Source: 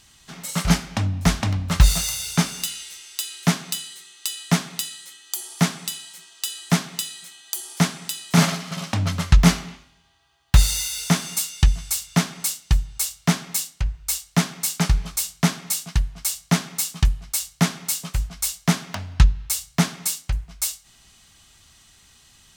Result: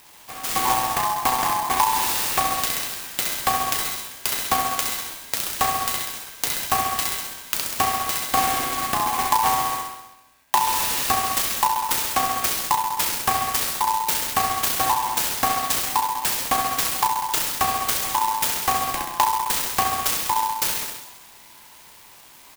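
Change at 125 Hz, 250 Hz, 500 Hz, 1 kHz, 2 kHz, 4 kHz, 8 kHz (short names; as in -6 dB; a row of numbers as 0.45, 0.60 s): -18.5, -12.5, +1.5, +13.0, +2.5, +1.5, +0.5 dB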